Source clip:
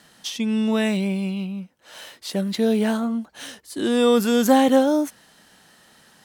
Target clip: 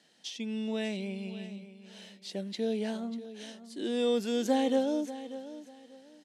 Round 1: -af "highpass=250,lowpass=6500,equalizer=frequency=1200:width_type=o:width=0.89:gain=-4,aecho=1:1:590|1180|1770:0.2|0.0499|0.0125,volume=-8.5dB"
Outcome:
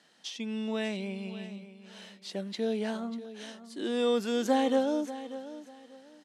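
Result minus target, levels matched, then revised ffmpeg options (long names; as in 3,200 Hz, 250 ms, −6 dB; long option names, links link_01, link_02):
1,000 Hz band +3.0 dB
-af "highpass=250,lowpass=6500,equalizer=frequency=1200:width_type=o:width=0.89:gain=-13,aecho=1:1:590|1180|1770:0.2|0.0499|0.0125,volume=-8.5dB"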